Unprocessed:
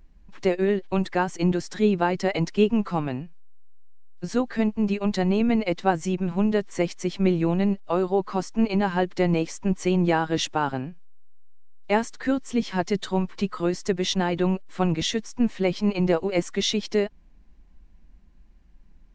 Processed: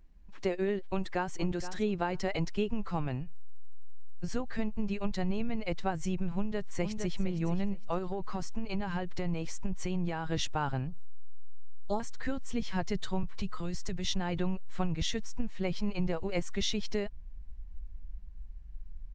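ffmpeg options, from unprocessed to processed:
ffmpeg -i in.wav -filter_complex "[0:a]asplit=2[link_01][link_02];[link_02]afade=type=in:start_time=0.84:duration=0.01,afade=type=out:start_time=1.38:duration=0.01,aecho=0:1:470|940:0.199526|0.0399052[link_03];[link_01][link_03]amix=inputs=2:normalize=0,asettb=1/sr,asplit=3[link_04][link_05][link_06];[link_04]atrim=end=3.004[link_07];[link_05]atrim=start=3:end=4.45,asetpts=PTS-STARTPTS,afade=type=in:duration=0.004:curve=qsin,afade=type=out:start_time=1.446:duration=0.004:curve=qsin,bandreject=frequency=3900:width=12[link_08];[link_06]atrim=start=4.446[link_09];[link_07][link_08]acrossfade=duration=0.004:curve1=hsin:curve2=qsin[link_10];[link_10][link_09]acrossfade=duration=0.004:curve1=qsin:curve2=hsin,asplit=2[link_11][link_12];[link_12]afade=type=in:start_time=6.35:duration=0.01,afade=type=out:start_time=7.18:duration=0.01,aecho=0:1:460|920|1380:0.354813|0.0709627|0.0141925[link_13];[link_11][link_13]amix=inputs=2:normalize=0,asettb=1/sr,asplit=3[link_14][link_15][link_16];[link_14]atrim=end=7.984[link_17];[link_15]atrim=start=7.98:end=10.3,asetpts=PTS-STARTPTS,afade=type=in:duration=0.004:curve=qsin,afade=type=out:start_time=2.316:duration=0.004:curve=qsin,acompressor=threshold=-22dB:ratio=6:attack=3.2:release=140:knee=1:detection=peak[link_18];[link_16]atrim=start=10.296[link_19];[link_17][link_18]acrossfade=duration=0.004:curve1=hsin:curve2=qsin[link_20];[link_20][link_19]acrossfade=duration=0.004:curve1=qsin:curve2=hsin,asettb=1/sr,asplit=3[link_21][link_22][link_23];[link_21]atrim=end=10.874[link_24];[link_22]atrim=start=10.87:end=12,asetpts=PTS-STARTPTS,afade=type=in:duration=0.004:curve=qsin,afade=type=out:start_time=1.126:duration=0.004:curve=qsin,asuperstop=centerf=2100:order=20:qfactor=1.1[link_25];[link_23]atrim=start=11.996[link_26];[link_24][link_25]acrossfade=duration=0.004:curve1=hsin:curve2=qsin[link_27];[link_27][link_26]acrossfade=duration=0.004:curve1=qsin:curve2=hsin,asettb=1/sr,asplit=3[link_28][link_29][link_30];[link_28]atrim=end=13.234[link_31];[link_29]atrim=start=13.23:end=14.07,asetpts=PTS-STARTPTS,afade=type=in:duration=0.004:curve=qsin,afade=type=out:start_time=0.836:duration=0.004:curve=qsin,acrossover=split=170|3000[link_32][link_33][link_34];[link_33]acompressor=threshold=-30dB:ratio=6:attack=3.2:release=140:knee=2.83:detection=peak[link_35];[link_32][link_35][link_34]amix=inputs=3:normalize=0[link_36];[link_30]atrim=start=14.066[link_37];[link_31][link_36]acrossfade=duration=0.004:curve1=hsin:curve2=qsin[link_38];[link_38][link_37]acrossfade=duration=0.004:curve1=qsin:curve2=hsin,asubboost=boost=7:cutoff=100,acompressor=threshold=-19dB:ratio=6,volume=-6dB" out.wav

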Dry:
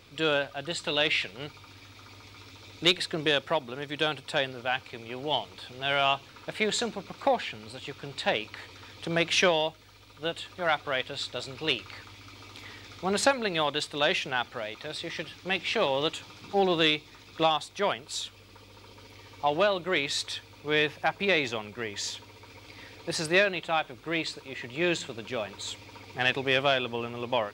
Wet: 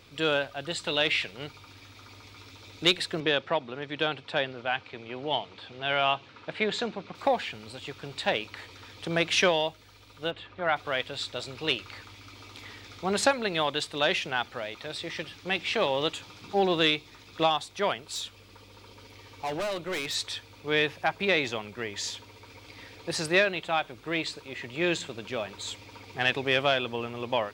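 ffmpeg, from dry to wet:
ffmpeg -i in.wav -filter_complex "[0:a]asettb=1/sr,asplit=3[link_01][link_02][link_03];[link_01]atrim=end=3.204[link_04];[link_02]atrim=start=3.2:end=7.15,asetpts=PTS-STARTPTS,afade=type=in:duration=0.004:curve=qsin,afade=type=out:start_time=3.946:duration=0.004:curve=qsin,highpass=100,lowpass=4000[link_05];[link_03]atrim=start=7.146[link_06];[link_04][link_05]acrossfade=duration=0.004:curve1=hsin:curve2=qsin[link_07];[link_07][link_06]acrossfade=duration=0.004:curve1=qsin:curve2=hsin,asplit=3[link_08][link_09][link_10];[link_08]afade=type=out:start_time=10.3:duration=0.02[link_11];[link_09]lowpass=2600,afade=type=in:start_time=10.3:duration=0.02,afade=type=out:start_time=10.75:duration=0.02[link_12];[link_10]afade=type=in:start_time=10.75:duration=0.02[link_13];[link_11][link_12][link_13]amix=inputs=3:normalize=0,asettb=1/sr,asplit=3[link_14][link_15][link_16];[link_14]atrim=end=18.074[link_17];[link_15]atrim=start=18.07:end=20.15,asetpts=PTS-STARTPTS,afade=type=in:duration=0.004:curve=qsin,afade=type=out:start_time=2.076:duration=0.004:curve=qsin,volume=28.5dB,asoftclip=hard,volume=-28.5dB[link_18];[link_16]atrim=start=20.146[link_19];[link_17][link_18]acrossfade=duration=0.004:curve1=hsin:curve2=qsin[link_20];[link_20][link_19]acrossfade=duration=0.004:curve1=qsin:curve2=hsin" out.wav

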